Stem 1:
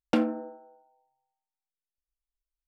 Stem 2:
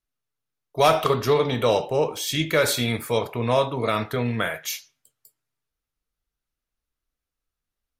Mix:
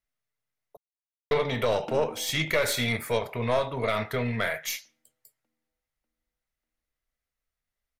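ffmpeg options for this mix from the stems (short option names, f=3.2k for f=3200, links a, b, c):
-filter_complex "[0:a]acompressor=threshold=-29dB:ratio=6,adelay=1750,volume=-4.5dB,asplit=2[a][b];[b]volume=-20dB[c];[1:a]equalizer=f=315:t=o:w=0.33:g=-6,equalizer=f=630:t=o:w=0.33:g=5,equalizer=f=2k:t=o:w=0.33:g=9,aeval=exprs='(tanh(3.16*val(0)+0.55)-tanh(0.55))/3.16':c=same,volume=-0.5dB,asplit=3[d][e][f];[d]atrim=end=0.77,asetpts=PTS-STARTPTS,afade=t=out:st=0.766:d=0.004:c=hsin[g];[e]atrim=start=0.77:end=1.31,asetpts=PTS-STARTPTS,volume=0[h];[f]atrim=start=1.31,asetpts=PTS-STARTPTS,afade=t=in:d=0.004:c=hsin[i];[g][h][i]concat=n=3:v=0:a=1[j];[c]aecho=0:1:594|1188|1782|2376|2970|3564|4158|4752:1|0.53|0.281|0.149|0.0789|0.0418|0.0222|0.0117[k];[a][j][k]amix=inputs=3:normalize=0,alimiter=limit=-14dB:level=0:latency=1:release=210"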